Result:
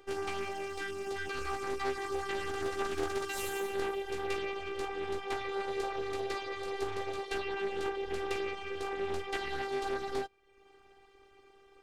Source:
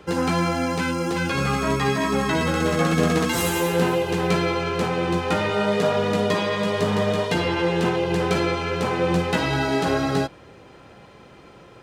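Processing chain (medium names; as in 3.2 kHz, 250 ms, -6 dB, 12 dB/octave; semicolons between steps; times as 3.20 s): reverb removal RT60 0.7 s; robot voice 393 Hz; loudspeaker Doppler distortion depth 0.27 ms; trim -9 dB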